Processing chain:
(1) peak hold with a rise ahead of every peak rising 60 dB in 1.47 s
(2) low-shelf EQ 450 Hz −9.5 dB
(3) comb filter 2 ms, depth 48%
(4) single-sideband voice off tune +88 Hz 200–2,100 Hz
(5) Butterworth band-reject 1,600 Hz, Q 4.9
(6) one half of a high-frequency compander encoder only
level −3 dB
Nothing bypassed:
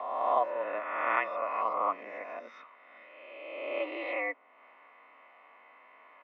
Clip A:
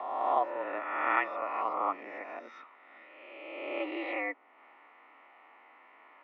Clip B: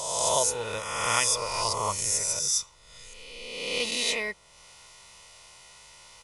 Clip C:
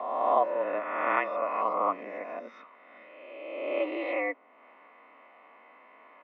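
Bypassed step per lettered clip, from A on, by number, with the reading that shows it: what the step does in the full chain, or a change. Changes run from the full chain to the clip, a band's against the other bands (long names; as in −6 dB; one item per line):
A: 3, 250 Hz band +5.0 dB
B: 4, 4 kHz band +22.0 dB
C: 2, 250 Hz band +6.0 dB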